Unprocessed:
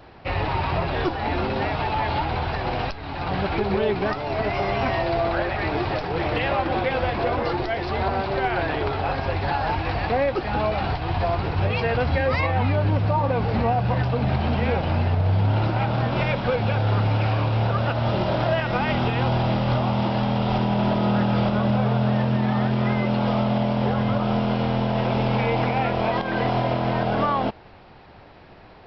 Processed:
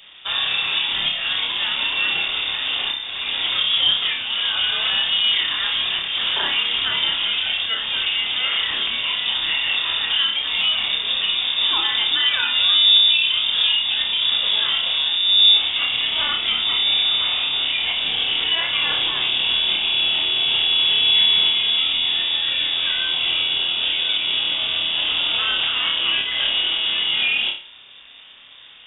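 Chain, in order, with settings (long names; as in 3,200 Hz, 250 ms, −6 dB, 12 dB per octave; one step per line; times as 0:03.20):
on a send: flutter between parallel walls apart 5.1 metres, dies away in 0.41 s
on the sum: voice inversion scrambler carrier 3,600 Hz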